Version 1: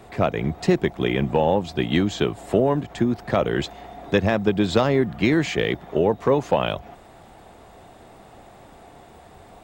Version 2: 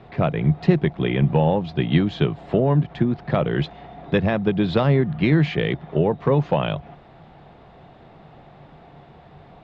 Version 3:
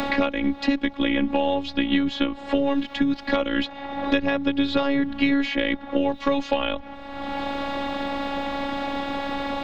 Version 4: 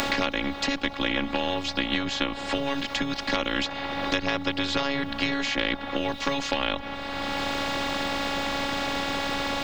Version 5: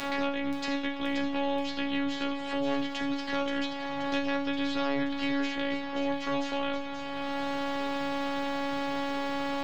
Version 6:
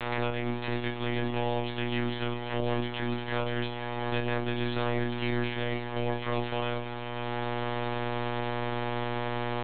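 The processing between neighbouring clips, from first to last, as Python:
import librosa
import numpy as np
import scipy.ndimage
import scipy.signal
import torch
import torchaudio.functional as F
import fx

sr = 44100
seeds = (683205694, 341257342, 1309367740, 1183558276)

y1 = scipy.signal.sosfilt(scipy.signal.butter(4, 4100.0, 'lowpass', fs=sr, output='sos'), x)
y1 = fx.peak_eq(y1, sr, hz=150.0, db=13.0, octaves=0.43)
y1 = F.gain(torch.from_numpy(y1), -1.5).numpy()
y2 = fx.high_shelf(y1, sr, hz=2200.0, db=9.5)
y2 = fx.robotise(y2, sr, hz=279.0)
y2 = fx.band_squash(y2, sr, depth_pct=100)
y3 = fx.spectral_comp(y2, sr, ratio=2.0)
y4 = fx.comb_fb(y3, sr, f0_hz=140.0, decay_s=0.44, harmonics='all', damping=0.0, mix_pct=90)
y4 = fx.echo_wet_highpass(y4, sr, ms=528, feedback_pct=64, hz=2300.0, wet_db=-7.0)
y4 = F.gain(torch.from_numpy(y4), 1.5).numpy()
y5 = fx.lpc_monotone(y4, sr, seeds[0], pitch_hz=120.0, order=16)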